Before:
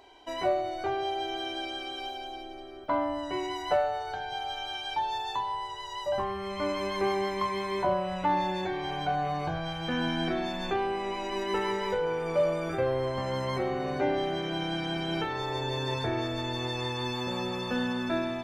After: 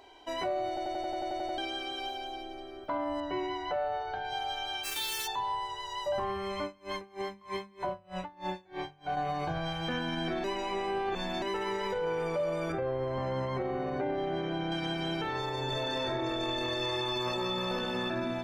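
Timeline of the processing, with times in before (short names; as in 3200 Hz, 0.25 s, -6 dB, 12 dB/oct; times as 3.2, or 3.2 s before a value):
0.68 stutter in place 0.09 s, 10 plays
3.2–4.25 air absorption 180 m
4.83–5.26 spectral whitening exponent 0.1
6.62–9.17 dB-linear tremolo 3.2 Hz, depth 32 dB
10.44–11.42 reverse
12.72–14.72 LPF 1600 Hz 6 dB/oct
15.66–18.03 reverb throw, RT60 0.91 s, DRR -9.5 dB
whole clip: notches 50/100/150/200/250 Hz; limiter -24.5 dBFS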